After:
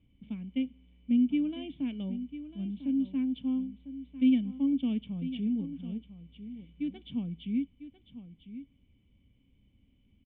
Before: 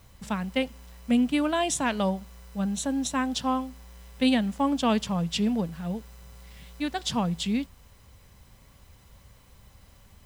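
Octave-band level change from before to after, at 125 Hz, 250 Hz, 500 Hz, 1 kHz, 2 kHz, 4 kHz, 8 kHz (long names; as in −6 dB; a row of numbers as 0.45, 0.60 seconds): −8.0 dB, −2.0 dB, −18.5 dB, below −25 dB, −17.5 dB, −16.0 dB, below −40 dB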